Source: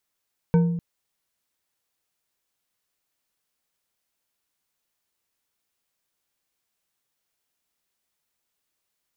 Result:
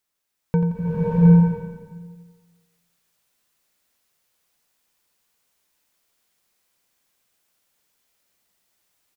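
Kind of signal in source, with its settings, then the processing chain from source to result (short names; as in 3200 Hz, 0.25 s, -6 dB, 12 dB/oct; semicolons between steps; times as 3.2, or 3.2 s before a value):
glass hit bar, length 0.25 s, lowest mode 170 Hz, decay 1.07 s, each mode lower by 8 dB, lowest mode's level -13 dB
feedback echo 87 ms, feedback 46%, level -9 dB; bloom reverb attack 0.73 s, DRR -7.5 dB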